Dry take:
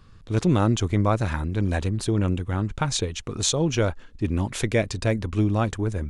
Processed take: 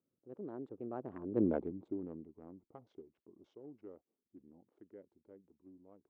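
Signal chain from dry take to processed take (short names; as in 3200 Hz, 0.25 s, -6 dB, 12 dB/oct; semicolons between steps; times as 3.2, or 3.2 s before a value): Wiener smoothing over 25 samples; Doppler pass-by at 1.45, 46 m/s, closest 4 m; ladder band-pass 410 Hz, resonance 30%; gain +10.5 dB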